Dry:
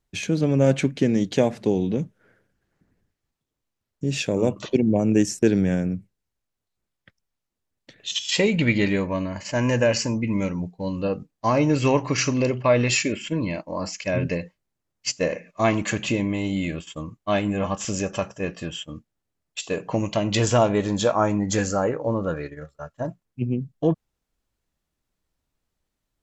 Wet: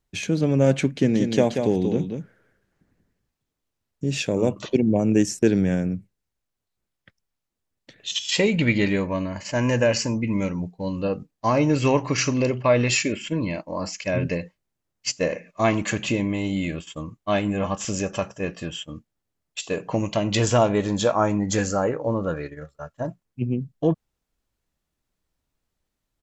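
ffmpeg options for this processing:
-filter_complex "[0:a]asplit=3[a][b][c];[a]afade=t=out:st=1.03:d=0.02[d];[b]aecho=1:1:184:0.501,afade=t=in:st=1.03:d=0.02,afade=t=out:st=4.1:d=0.02[e];[c]afade=t=in:st=4.1:d=0.02[f];[d][e][f]amix=inputs=3:normalize=0"

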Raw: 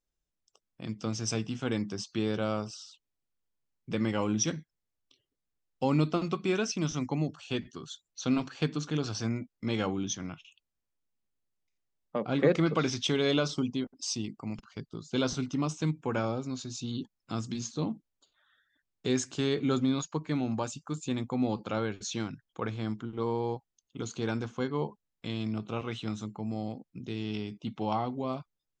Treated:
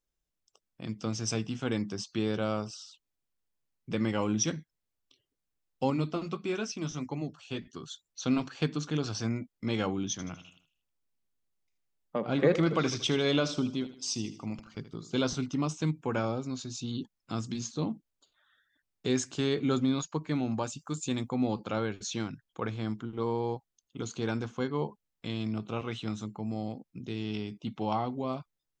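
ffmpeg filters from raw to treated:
-filter_complex "[0:a]asettb=1/sr,asplit=3[a][b][c];[a]atrim=end=5.904[d];[b]atrim=start=5.9:end=7.73,asetpts=PTS-STARTPTS,afade=t=in:d=0.004:c=qsin,afade=t=out:st=1.826:d=0.004:c=qsin,flanger=delay=1.8:depth=7.3:regen=-53:speed=1.6:shape=triangular[e];[c]atrim=start=7.726[f];[d][e]acrossfade=d=0.004:c1=hsin:c2=qsin[g];[g][f]acrossfade=d=0.004:c1=qsin:c2=hsin,asettb=1/sr,asplit=3[h][i][j];[h]atrim=end=10.114[k];[i]atrim=start=10.11:end=15.22,asetpts=PTS-STARTPTS,afade=t=in:d=0.004:c=qsin,afade=t=out:st=5.106:d=0.004:c=qsin,aecho=1:1:78|156|234|312:0.211|0.0951|0.0428|0.0193,atrim=end_sample=225351[l];[j]atrim=start=15.216[m];[k][l]acrossfade=d=0.004:c1=hsin:c2=qsin[n];[n][m]acrossfade=d=0.004:c1=qsin:c2=hsin,asettb=1/sr,asplit=3[o][p][q];[o]atrim=end=20.794[r];[p]atrim=start=20.79:end=21.29,asetpts=PTS-STARTPTS,afade=t=in:d=0.004:c=qsin,afade=t=out:st=0.496:d=0.004:c=qsin,highshelf=f=4.6k:g=8.5[s];[q]atrim=start=21.286[t];[r][s]acrossfade=d=0.004:c1=hsin:c2=qsin[u];[u][t]acrossfade=d=0.004:c1=qsin:c2=hsin"

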